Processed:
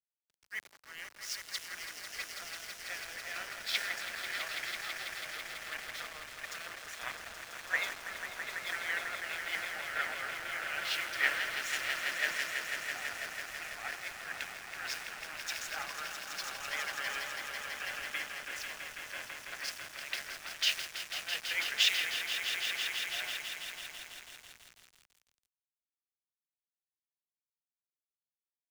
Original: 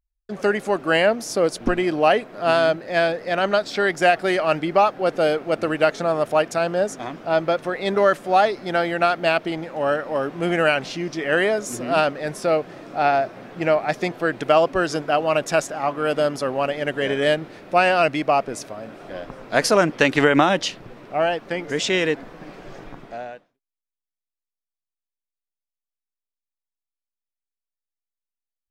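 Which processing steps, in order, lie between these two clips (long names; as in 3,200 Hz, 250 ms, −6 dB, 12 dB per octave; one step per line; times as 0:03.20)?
compressor whose output falls as the input rises −27 dBFS, ratio −1
four-pole ladder band-pass 2,500 Hz, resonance 25%
on a send: echo that builds up and dies away 165 ms, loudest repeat 5, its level −6 dB
on the sum: centre clipping without the shift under −43.5 dBFS
multiband upward and downward expander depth 100%
level +3.5 dB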